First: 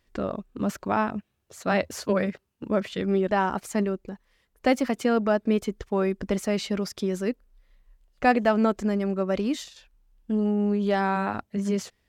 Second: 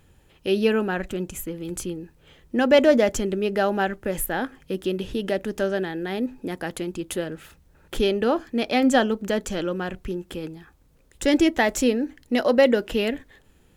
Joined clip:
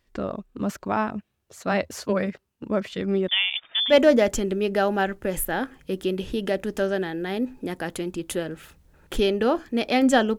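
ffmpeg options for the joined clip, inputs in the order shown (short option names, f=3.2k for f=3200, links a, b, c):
-filter_complex "[0:a]asettb=1/sr,asplit=3[a][b][c];[a]atrim=end=3.284[d];[b]atrim=start=3.28:end=3.94,asetpts=PTS-STARTPTS,afade=t=in:d=0.004:c=qsin,afade=t=out:st=0.656:d=0.004:c=qsin,lowpass=f=3.1k:t=q:w=0.5098,lowpass=f=3.1k:t=q:w=0.6013,lowpass=f=3.1k:t=q:w=0.9,lowpass=f=3.1k:t=q:w=2.563,afreqshift=-3700[e];[c]atrim=start=3.936[f];[d][e]acrossfade=d=0.004:c1=hsin:c2=qsin[g];[g][f]acrossfade=d=0.004:c1=qsin:c2=hsin,apad=whole_dur=10.38,atrim=end=10.38,atrim=end=3.94,asetpts=PTS-STARTPTS[h];[1:a]atrim=start=2.69:end=9.19,asetpts=PTS-STARTPTS[i];[h][i]acrossfade=d=0.06:c1=tri:c2=tri"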